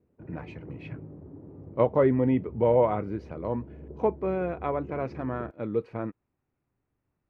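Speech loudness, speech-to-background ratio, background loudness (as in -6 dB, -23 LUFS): -28.0 LUFS, 17.5 dB, -45.5 LUFS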